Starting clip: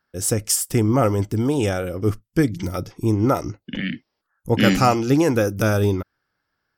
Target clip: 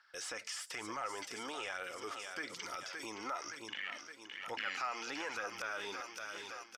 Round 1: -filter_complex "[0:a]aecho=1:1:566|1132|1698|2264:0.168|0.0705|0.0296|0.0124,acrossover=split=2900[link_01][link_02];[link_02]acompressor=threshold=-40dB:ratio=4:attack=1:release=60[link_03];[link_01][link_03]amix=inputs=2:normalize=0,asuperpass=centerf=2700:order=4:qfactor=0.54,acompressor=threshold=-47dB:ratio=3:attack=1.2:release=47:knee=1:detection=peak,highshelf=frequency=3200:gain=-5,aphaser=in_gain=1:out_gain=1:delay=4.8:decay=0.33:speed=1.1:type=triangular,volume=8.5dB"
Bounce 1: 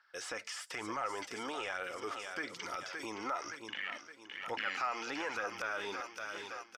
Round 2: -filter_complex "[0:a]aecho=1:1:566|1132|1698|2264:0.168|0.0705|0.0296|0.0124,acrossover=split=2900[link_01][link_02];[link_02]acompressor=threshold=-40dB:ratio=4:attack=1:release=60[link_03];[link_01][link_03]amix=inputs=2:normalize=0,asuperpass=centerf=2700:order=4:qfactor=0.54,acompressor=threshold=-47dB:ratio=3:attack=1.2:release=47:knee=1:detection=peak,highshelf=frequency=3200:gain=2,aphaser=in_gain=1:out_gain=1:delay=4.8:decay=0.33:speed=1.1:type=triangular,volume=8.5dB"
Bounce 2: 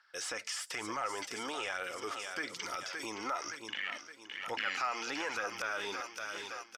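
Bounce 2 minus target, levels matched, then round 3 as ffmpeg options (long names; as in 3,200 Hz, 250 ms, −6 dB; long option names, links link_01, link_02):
downward compressor: peak gain reduction −4 dB
-filter_complex "[0:a]aecho=1:1:566|1132|1698|2264:0.168|0.0705|0.0296|0.0124,acrossover=split=2900[link_01][link_02];[link_02]acompressor=threshold=-40dB:ratio=4:attack=1:release=60[link_03];[link_01][link_03]amix=inputs=2:normalize=0,asuperpass=centerf=2700:order=4:qfactor=0.54,acompressor=threshold=-53dB:ratio=3:attack=1.2:release=47:knee=1:detection=peak,highshelf=frequency=3200:gain=2,aphaser=in_gain=1:out_gain=1:delay=4.8:decay=0.33:speed=1.1:type=triangular,volume=8.5dB"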